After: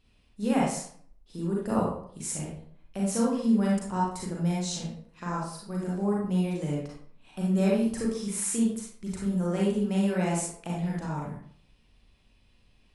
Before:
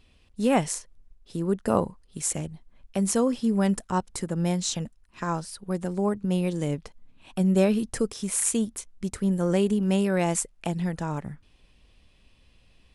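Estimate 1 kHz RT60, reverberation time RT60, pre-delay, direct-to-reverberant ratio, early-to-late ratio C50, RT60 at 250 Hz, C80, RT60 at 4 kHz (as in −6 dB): 0.55 s, 0.55 s, 34 ms, −4.5 dB, 0.0 dB, 0.60 s, 5.0 dB, 0.40 s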